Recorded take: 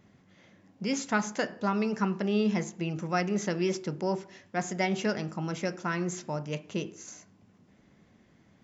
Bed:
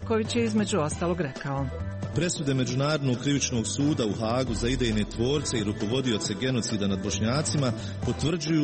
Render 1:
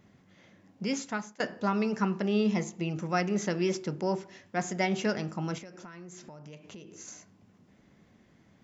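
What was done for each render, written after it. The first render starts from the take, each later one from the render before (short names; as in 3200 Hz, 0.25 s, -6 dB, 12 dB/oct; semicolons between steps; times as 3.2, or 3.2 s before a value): 0.84–1.4 fade out, to -23.5 dB; 2.49–2.91 notch 1600 Hz, Q 5.5; 5.58–6.96 compressor 8:1, threshold -43 dBFS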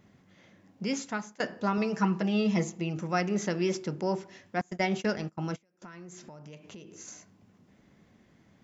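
1.77–2.78 comb 6.2 ms, depth 66%; 4.61–5.82 gate -35 dBFS, range -25 dB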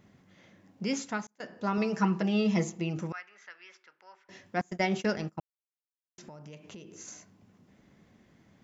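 1.27–1.79 fade in; 3.12–4.29 ladder band-pass 1900 Hz, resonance 35%; 5.4–6.18 mute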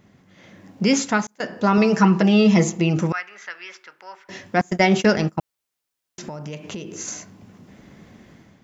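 in parallel at -1.5 dB: limiter -24 dBFS, peak gain reduction 10 dB; on the sum: AGC gain up to 9 dB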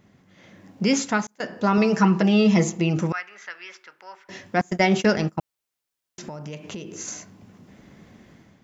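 gain -2.5 dB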